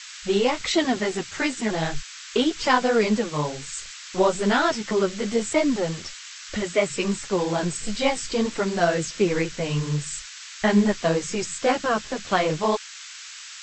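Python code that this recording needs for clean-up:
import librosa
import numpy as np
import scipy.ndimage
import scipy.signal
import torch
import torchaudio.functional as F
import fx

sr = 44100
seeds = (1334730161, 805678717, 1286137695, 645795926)

y = fx.noise_reduce(x, sr, print_start_s=12.78, print_end_s=13.28, reduce_db=28.0)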